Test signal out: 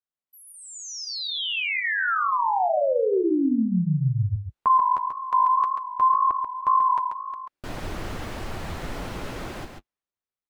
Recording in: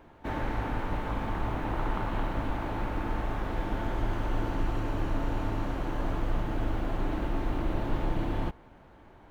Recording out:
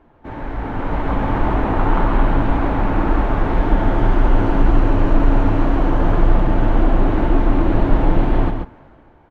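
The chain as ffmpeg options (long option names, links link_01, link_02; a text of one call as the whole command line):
ffmpeg -i in.wav -af "lowpass=frequency=1700:poles=1,dynaudnorm=framelen=150:gausssize=11:maxgain=12dB,flanger=delay=2.7:depth=8.9:regen=-28:speed=1.9:shape=sinusoidal,aecho=1:1:137:0.501,volume=5.5dB" out.wav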